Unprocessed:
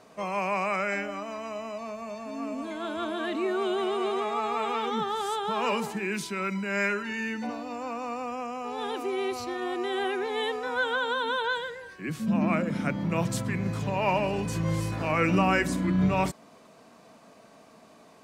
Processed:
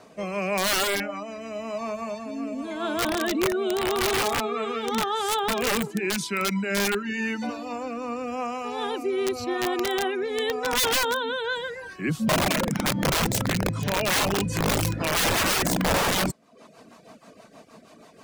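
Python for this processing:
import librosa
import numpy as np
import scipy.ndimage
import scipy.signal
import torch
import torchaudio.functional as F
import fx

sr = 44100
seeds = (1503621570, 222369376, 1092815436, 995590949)

y = fx.rotary_switch(x, sr, hz=0.9, then_hz=6.3, switch_at_s=13.58)
y = (np.mod(10.0 ** (24.0 / 20.0) * y + 1.0, 2.0) - 1.0) / 10.0 ** (24.0 / 20.0)
y = fx.dereverb_blind(y, sr, rt60_s=0.55)
y = y * librosa.db_to_amplitude(7.5)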